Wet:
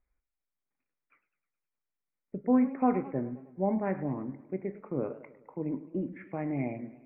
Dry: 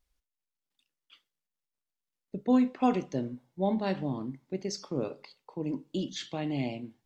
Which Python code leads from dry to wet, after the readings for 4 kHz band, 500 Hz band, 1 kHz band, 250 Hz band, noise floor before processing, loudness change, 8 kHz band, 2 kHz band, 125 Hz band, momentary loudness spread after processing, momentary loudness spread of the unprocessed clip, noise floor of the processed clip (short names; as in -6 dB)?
under -35 dB, 0.0 dB, -0.5 dB, -0.5 dB, under -85 dBFS, -0.5 dB, n/a, -1.5 dB, -0.5 dB, 12 LU, 12 LU, under -85 dBFS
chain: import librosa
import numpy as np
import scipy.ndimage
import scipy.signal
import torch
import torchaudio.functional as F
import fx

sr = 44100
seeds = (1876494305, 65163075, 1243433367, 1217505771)

y = scipy.signal.sosfilt(scipy.signal.cheby1(8, 1.0, 2400.0, 'lowpass', fs=sr, output='sos'), x)
y = fx.echo_warbled(y, sr, ms=104, feedback_pct=55, rate_hz=2.8, cents=129, wet_db=-16.0)